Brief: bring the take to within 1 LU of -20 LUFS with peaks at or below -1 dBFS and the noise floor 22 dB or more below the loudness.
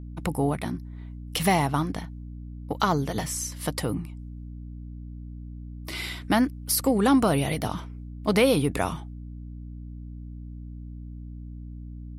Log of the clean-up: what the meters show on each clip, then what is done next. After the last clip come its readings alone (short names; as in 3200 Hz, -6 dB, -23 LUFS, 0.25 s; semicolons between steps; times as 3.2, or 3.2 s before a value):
hum 60 Hz; harmonics up to 300 Hz; hum level -36 dBFS; loudness -26.0 LUFS; peak -8.5 dBFS; loudness target -20.0 LUFS
-> de-hum 60 Hz, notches 5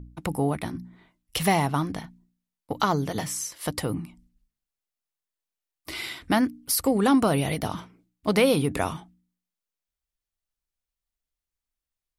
hum none; loudness -26.0 LUFS; peak -9.0 dBFS; loudness target -20.0 LUFS
-> gain +6 dB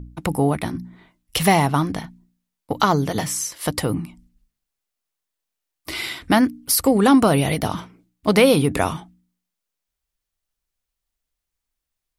loudness -20.0 LUFS; peak -3.0 dBFS; noise floor -83 dBFS